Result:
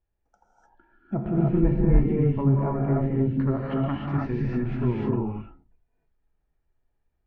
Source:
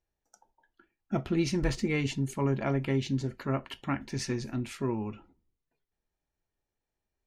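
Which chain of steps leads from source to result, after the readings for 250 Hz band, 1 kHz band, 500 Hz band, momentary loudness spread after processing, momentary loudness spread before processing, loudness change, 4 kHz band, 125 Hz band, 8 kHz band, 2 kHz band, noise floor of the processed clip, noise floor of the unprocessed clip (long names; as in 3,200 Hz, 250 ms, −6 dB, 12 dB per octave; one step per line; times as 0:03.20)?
+7.0 dB, +4.0 dB, +5.5 dB, 7 LU, 6 LU, +7.0 dB, below −10 dB, +9.0 dB, below −30 dB, −4.5 dB, −75 dBFS, below −85 dBFS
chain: treble cut that deepens with the level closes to 1,000 Hz, closed at −26.5 dBFS
low-pass filter 2,100 Hz 12 dB per octave
low-shelf EQ 100 Hz +9.5 dB
reverb whose tail is shaped and stops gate 330 ms rising, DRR −4.5 dB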